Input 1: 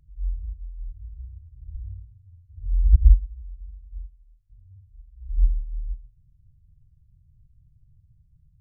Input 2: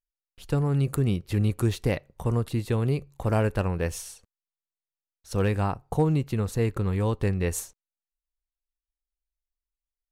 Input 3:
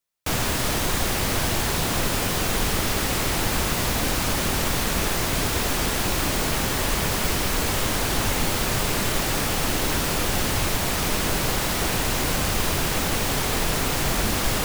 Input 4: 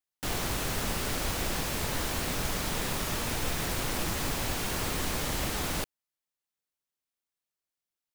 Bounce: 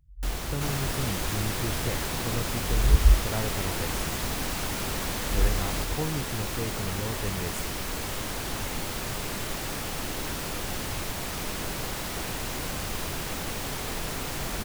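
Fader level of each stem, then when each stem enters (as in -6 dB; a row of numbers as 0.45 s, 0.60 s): -4.5 dB, -8.5 dB, -9.0 dB, -3.5 dB; 0.00 s, 0.00 s, 0.35 s, 0.00 s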